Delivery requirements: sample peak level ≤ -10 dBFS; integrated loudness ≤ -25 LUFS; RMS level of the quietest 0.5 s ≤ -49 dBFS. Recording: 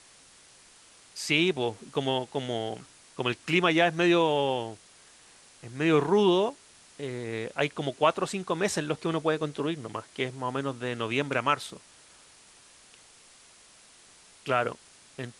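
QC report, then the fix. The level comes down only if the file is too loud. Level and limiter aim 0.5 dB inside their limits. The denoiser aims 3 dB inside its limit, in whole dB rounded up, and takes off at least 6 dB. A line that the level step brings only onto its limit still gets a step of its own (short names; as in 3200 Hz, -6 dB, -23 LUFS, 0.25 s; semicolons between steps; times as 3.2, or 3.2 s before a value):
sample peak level -9.0 dBFS: fail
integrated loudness -28.0 LUFS: OK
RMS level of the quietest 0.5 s -56 dBFS: OK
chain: limiter -10.5 dBFS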